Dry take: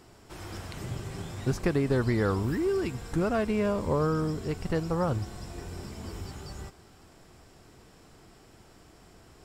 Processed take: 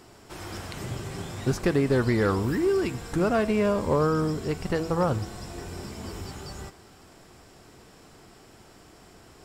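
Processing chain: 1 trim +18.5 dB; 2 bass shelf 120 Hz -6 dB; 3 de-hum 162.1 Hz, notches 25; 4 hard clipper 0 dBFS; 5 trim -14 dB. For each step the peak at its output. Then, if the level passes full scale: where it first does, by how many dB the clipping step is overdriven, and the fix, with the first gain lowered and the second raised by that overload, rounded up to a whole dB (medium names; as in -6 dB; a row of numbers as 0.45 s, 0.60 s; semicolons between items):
+6.0 dBFS, +6.0 dBFS, +5.5 dBFS, 0.0 dBFS, -14.0 dBFS; step 1, 5.5 dB; step 1 +12.5 dB, step 5 -8 dB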